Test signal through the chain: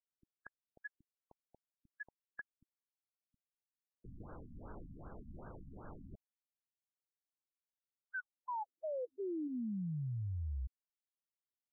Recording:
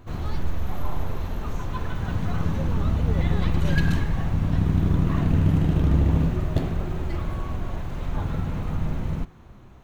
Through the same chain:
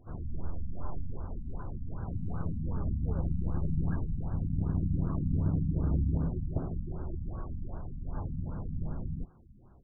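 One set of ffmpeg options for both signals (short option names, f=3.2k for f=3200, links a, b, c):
-af "afftfilt=real='re*lt(b*sr/1024,260*pow(1700/260,0.5+0.5*sin(2*PI*2.6*pts/sr)))':imag='im*lt(b*sr/1024,260*pow(1700/260,0.5+0.5*sin(2*PI*2.6*pts/sr)))':win_size=1024:overlap=0.75,volume=-9dB"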